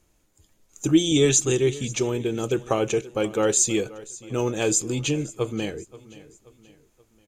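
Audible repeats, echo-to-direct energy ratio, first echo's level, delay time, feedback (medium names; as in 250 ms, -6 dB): 3, -18.0 dB, -19.0 dB, 529 ms, 43%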